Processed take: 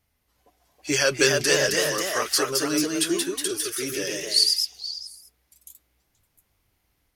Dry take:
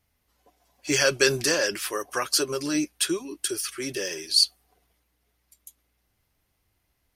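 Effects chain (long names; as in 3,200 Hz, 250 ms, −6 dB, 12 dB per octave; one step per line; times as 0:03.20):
echo through a band-pass that steps 238 ms, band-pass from 1,600 Hz, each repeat 1.4 octaves, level −10.5 dB
delay with pitch and tempo change per echo 348 ms, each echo +1 semitone, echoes 2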